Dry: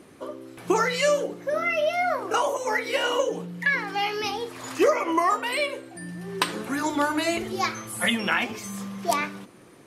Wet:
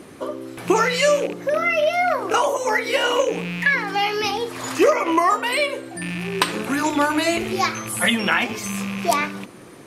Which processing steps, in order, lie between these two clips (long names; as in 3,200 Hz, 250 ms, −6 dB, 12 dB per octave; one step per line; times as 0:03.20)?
loose part that buzzes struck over −38 dBFS, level −28 dBFS
in parallel at −1.5 dB: downward compressor, threshold −33 dBFS, peak gain reduction 16.5 dB
on the sum: level +3 dB